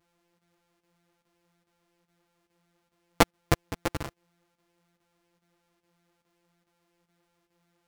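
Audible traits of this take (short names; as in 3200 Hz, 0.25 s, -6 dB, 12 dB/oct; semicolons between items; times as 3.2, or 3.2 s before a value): a buzz of ramps at a fixed pitch in blocks of 256 samples; chopped level 2.4 Hz, depth 65%, duty 90%; a shimmering, thickened sound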